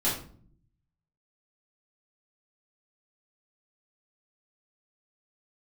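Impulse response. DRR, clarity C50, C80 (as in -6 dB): -10.0 dB, 5.5 dB, 10.0 dB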